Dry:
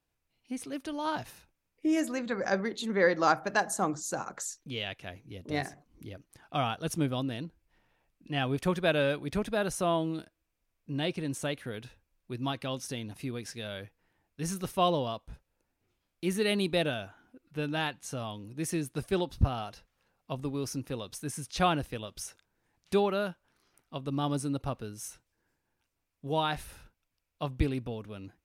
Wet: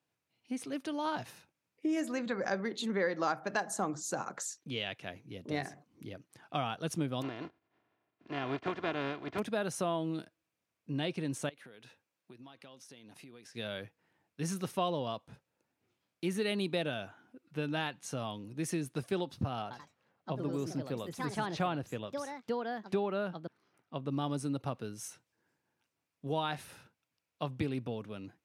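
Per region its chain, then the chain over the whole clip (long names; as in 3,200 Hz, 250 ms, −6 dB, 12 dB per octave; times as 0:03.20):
0:07.21–0:09.38: compressing power law on the bin magnitudes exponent 0.36 + head-to-tape spacing loss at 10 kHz 45 dB + comb filter 2.9 ms, depth 48%
0:11.49–0:13.55: high-pass filter 300 Hz 6 dB per octave + downward compressor 10 to 1, threshold −49 dBFS
0:19.62–0:24.10: high-shelf EQ 3,500 Hz −10.5 dB + delay with pitch and tempo change per echo 86 ms, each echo +3 semitones, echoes 2, each echo −6 dB
whole clip: high-pass filter 110 Hz 24 dB per octave; high-shelf EQ 11,000 Hz −9 dB; downward compressor 2.5 to 1, threshold −31 dBFS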